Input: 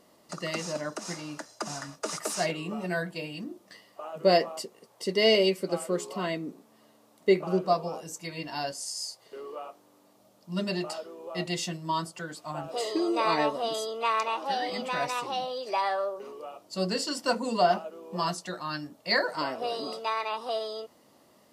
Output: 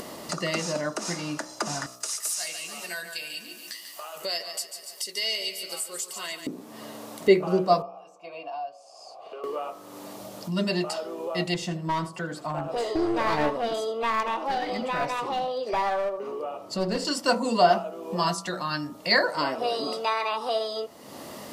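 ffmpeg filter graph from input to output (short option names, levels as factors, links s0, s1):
-filter_complex "[0:a]asettb=1/sr,asplit=3[s0][s1][s2];[s0]atrim=end=1.864[s3];[s1]atrim=start=1.86:end=6.47,asetpts=PTS-STARTPTS,afade=t=in:d=0.004:c=qsin,afade=t=out:st=4.606:d=0.004:c=qsin,aderivative,aecho=1:1:142|284|426|568|710:0.282|0.127|0.0571|0.0257|0.0116,atrim=end_sample=203301[s4];[s2]atrim=start=6.466[s5];[s3][s4]acrossfade=d=0.004:c1=hsin:c2=qsin[s6];[s6][s5]acrossfade=d=0.004:c1=qsin:c2=hsin,asettb=1/sr,asplit=3[s7][s8][s9];[s7]atrim=end=7.824[s10];[s8]atrim=start=7.82:end=9.44,asetpts=PTS-STARTPTS,afade=t=in:d=0.004:c=qsin,afade=t=out:st=1.616:d=0.004:c=qsin,acrossover=split=380|1100[s11][s12][s13];[s11]acompressor=threshold=0.002:ratio=4[s14];[s12]acompressor=threshold=0.00708:ratio=4[s15];[s13]acompressor=threshold=0.00355:ratio=4[s16];[s14][s15][s16]amix=inputs=3:normalize=0,asplit=3[s17][s18][s19];[s17]bandpass=f=730:t=q:w=8,volume=1[s20];[s18]bandpass=f=1090:t=q:w=8,volume=0.501[s21];[s19]bandpass=f=2440:t=q:w=8,volume=0.355[s22];[s20][s21][s22]amix=inputs=3:normalize=0[s23];[s9]atrim=start=9.436[s24];[s10][s23]acrossfade=d=0.004:c1=hsin:c2=qsin[s25];[s25][s24]acrossfade=d=0.004:c1=qsin:c2=hsin,asettb=1/sr,asplit=3[s26][s27][s28];[s26]atrim=end=11.544[s29];[s27]atrim=start=11.54:end=17.05,asetpts=PTS-STARTPTS,afade=t=in:d=0.004:c=qsin,afade=t=out:st=5.506:d=0.004:c=qsin,highshelf=f=2600:g=-10.5,aeval=exprs='clip(val(0),-1,0.0316)':c=same,aecho=1:1:80:0.158,atrim=end_sample=242991[s30];[s28]atrim=start=17.046[s31];[s29][s30]acrossfade=d=0.004:c1=hsin:c2=qsin[s32];[s32][s31]acrossfade=d=0.004:c1=qsin:c2=hsin,bandreject=f=61.75:t=h:w=4,bandreject=f=123.5:t=h:w=4,bandreject=f=185.25:t=h:w=4,bandreject=f=247:t=h:w=4,bandreject=f=308.75:t=h:w=4,bandreject=f=370.5:t=h:w=4,bandreject=f=432.25:t=h:w=4,bandreject=f=494:t=h:w=4,bandreject=f=555.75:t=h:w=4,bandreject=f=617.5:t=h:w=4,bandreject=f=679.25:t=h:w=4,bandreject=f=741:t=h:w=4,bandreject=f=802.75:t=h:w=4,bandreject=f=864.5:t=h:w=4,bandreject=f=926.25:t=h:w=4,bandreject=f=988:t=h:w=4,bandreject=f=1049.75:t=h:w=4,bandreject=f=1111.5:t=h:w=4,bandreject=f=1173.25:t=h:w=4,bandreject=f=1235:t=h:w=4,bandreject=f=1296.75:t=h:w=4,bandreject=f=1358.5:t=h:w=4,acompressor=mode=upward:threshold=0.0316:ratio=2.5,volume=1.68"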